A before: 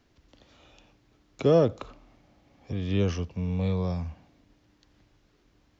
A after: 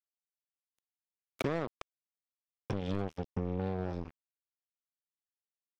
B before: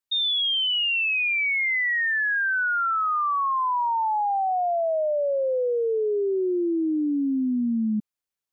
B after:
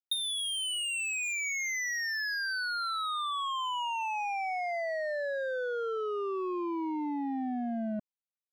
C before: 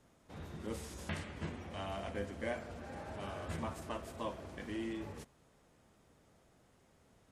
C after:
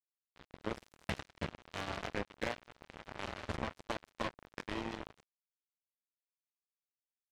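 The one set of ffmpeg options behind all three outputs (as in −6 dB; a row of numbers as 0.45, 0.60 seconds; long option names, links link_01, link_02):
-af "lowpass=4500,acompressor=threshold=-38dB:ratio=8,acrusher=bits=5:mix=0:aa=0.5,volume=6dB"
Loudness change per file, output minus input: −10.0, −9.0, +0.5 LU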